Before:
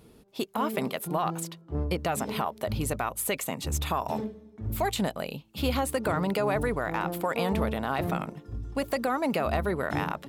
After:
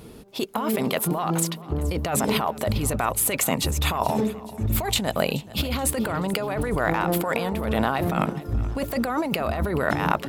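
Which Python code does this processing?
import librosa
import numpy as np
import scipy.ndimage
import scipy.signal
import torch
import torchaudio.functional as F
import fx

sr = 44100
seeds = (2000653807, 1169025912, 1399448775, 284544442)

p1 = fx.over_compress(x, sr, threshold_db=-32.0, ratio=-1.0)
p2 = p1 + fx.echo_feedback(p1, sr, ms=428, feedback_pct=51, wet_db=-19, dry=0)
y = F.gain(torch.from_numpy(p2), 8.0).numpy()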